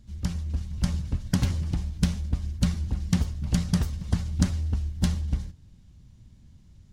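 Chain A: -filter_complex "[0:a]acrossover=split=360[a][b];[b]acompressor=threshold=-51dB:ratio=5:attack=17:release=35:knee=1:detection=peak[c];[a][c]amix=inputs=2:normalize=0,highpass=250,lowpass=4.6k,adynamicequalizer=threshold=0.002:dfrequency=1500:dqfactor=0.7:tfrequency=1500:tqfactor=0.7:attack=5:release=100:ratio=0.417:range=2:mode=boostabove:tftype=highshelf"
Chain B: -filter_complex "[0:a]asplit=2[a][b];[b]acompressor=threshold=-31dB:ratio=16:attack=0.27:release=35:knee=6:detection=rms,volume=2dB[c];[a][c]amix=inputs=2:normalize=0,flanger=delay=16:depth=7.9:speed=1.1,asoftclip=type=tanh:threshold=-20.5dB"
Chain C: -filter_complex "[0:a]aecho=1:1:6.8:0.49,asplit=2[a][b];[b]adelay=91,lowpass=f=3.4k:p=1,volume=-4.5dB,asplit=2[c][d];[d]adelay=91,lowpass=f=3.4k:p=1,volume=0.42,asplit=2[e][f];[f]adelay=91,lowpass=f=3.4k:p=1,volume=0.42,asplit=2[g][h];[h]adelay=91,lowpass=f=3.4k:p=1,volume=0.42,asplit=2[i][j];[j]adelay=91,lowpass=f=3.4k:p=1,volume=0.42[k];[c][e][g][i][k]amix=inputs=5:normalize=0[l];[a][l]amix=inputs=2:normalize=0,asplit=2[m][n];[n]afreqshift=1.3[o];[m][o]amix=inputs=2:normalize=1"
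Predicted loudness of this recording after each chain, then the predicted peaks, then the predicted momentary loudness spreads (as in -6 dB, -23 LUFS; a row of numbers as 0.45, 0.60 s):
-39.0, -31.0, -30.5 LUFS; -17.5, -20.5, -10.5 dBFS; 10, 20, 7 LU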